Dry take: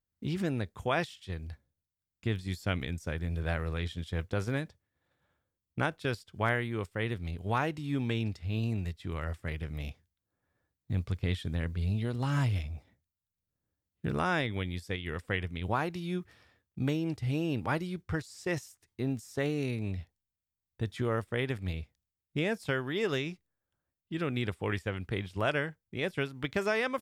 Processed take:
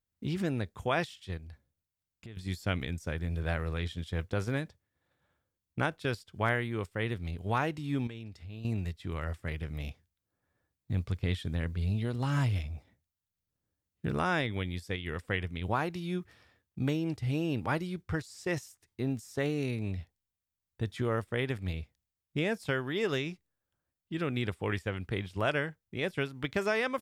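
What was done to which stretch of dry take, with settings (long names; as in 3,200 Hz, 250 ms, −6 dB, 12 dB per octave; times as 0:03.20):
0:01.37–0:02.37: downward compressor, threshold −44 dBFS
0:08.07–0:08.65: downward compressor 2.5 to 1, threshold −46 dBFS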